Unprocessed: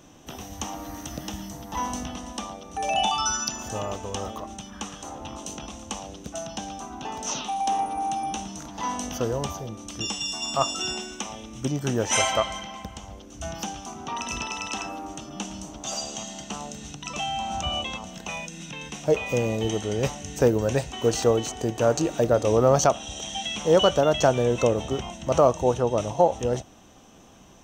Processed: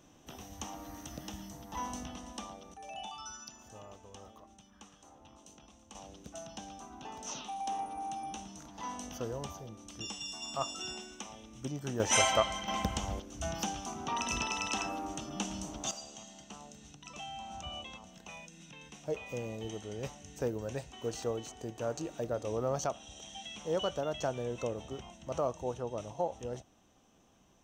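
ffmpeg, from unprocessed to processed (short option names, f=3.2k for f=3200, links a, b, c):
-af "asetnsamples=n=441:p=0,asendcmd='2.74 volume volume -20dB;5.95 volume volume -11.5dB;12 volume volume -4dB;12.68 volume volume 4.5dB;13.2 volume volume -3dB;15.91 volume volume -14.5dB',volume=-9.5dB"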